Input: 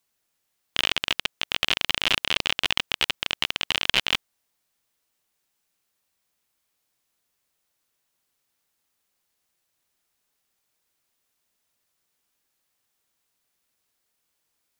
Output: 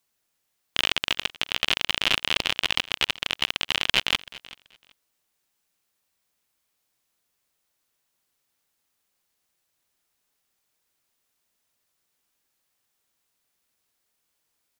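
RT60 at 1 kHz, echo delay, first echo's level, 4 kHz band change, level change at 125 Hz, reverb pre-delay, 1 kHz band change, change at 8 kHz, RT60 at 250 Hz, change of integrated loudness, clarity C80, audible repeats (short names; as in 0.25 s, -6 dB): none, 0.382 s, -20.0 dB, 0.0 dB, 0.0 dB, none, 0.0 dB, 0.0 dB, none, 0.0 dB, none, 2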